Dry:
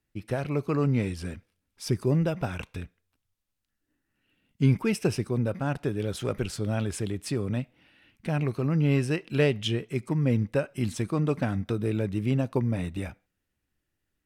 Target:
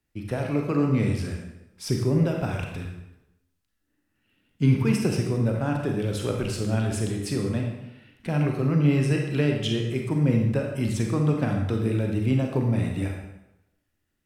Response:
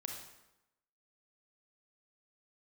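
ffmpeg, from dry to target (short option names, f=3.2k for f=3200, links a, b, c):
-filter_complex "[0:a]acrossover=split=320[a][b];[b]acompressor=threshold=-27dB:ratio=6[c];[a][c]amix=inputs=2:normalize=0[d];[1:a]atrim=start_sample=2205[e];[d][e]afir=irnorm=-1:irlink=0,volume=4.5dB"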